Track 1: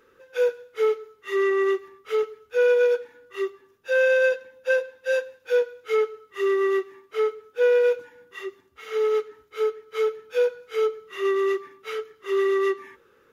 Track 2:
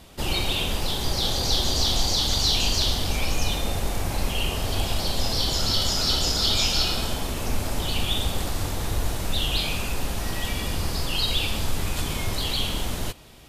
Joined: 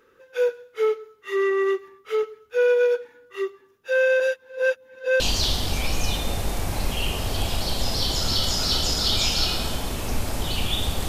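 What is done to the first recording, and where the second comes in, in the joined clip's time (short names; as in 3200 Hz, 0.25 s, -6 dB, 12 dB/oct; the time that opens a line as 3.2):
track 1
4.2–5.2 reverse
5.2 switch to track 2 from 2.58 s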